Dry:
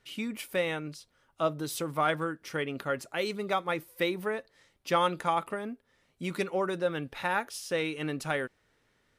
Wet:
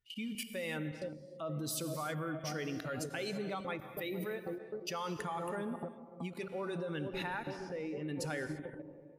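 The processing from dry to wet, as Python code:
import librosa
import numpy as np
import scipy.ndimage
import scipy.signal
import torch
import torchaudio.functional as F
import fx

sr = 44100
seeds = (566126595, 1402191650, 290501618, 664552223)

y = fx.bin_expand(x, sr, power=1.5)
y = fx.echo_wet_lowpass(y, sr, ms=460, feedback_pct=63, hz=480.0, wet_db=-12)
y = fx.level_steps(y, sr, step_db=24)
y = fx.lowpass(y, sr, hz=fx.line((7.43, 2400.0), (8.07, 1000.0)), slope=12, at=(7.43, 8.07), fade=0.02)
y = fx.rev_gated(y, sr, seeds[0], gate_ms=360, shape='flat', drr_db=8.5)
y = fx.end_taper(y, sr, db_per_s=180.0)
y = y * librosa.db_to_amplitude(9.5)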